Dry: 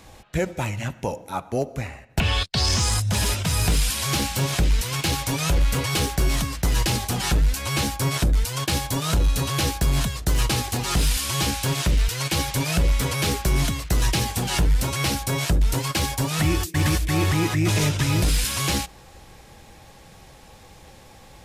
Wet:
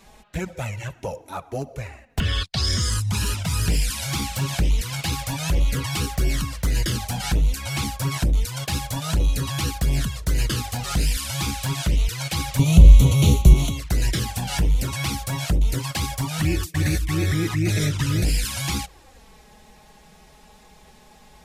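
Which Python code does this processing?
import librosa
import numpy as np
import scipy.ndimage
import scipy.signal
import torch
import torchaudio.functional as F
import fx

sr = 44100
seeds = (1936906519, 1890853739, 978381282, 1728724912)

y = fx.bass_treble(x, sr, bass_db=12, treble_db=2, at=(12.59, 13.54))
y = fx.env_flanger(y, sr, rest_ms=5.3, full_db=-15.0)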